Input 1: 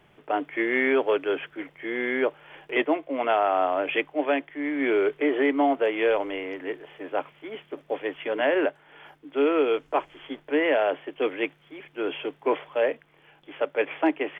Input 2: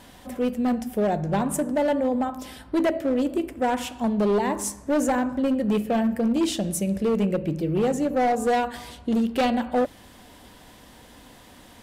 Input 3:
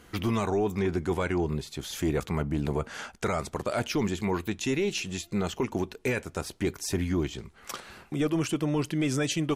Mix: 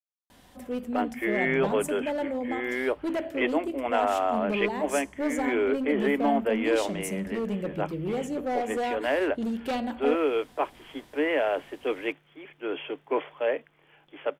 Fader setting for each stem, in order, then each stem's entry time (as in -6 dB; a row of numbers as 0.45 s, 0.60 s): -3.0 dB, -7.5 dB, mute; 0.65 s, 0.30 s, mute